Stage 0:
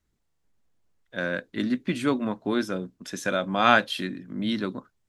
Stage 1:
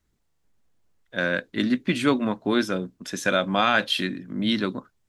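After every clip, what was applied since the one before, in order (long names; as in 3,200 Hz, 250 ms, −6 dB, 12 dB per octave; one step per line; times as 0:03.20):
dynamic equaliser 3,000 Hz, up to +4 dB, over −40 dBFS, Q 0.74
boost into a limiter +8.5 dB
level −5.5 dB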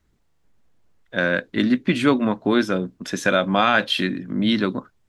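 high-shelf EQ 4,700 Hz −7.5 dB
in parallel at −3 dB: downward compressor, threshold −28 dBFS, peak gain reduction 12.5 dB
on the sum: level +2 dB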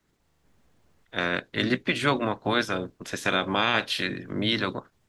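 ceiling on every frequency bin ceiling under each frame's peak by 15 dB
level −6 dB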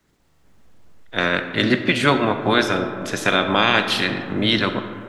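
comb and all-pass reverb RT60 2.6 s, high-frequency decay 0.35×, pre-delay 10 ms, DRR 8 dB
level +6.5 dB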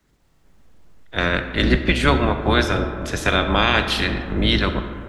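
sub-octave generator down 2 octaves, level +2 dB
level −1 dB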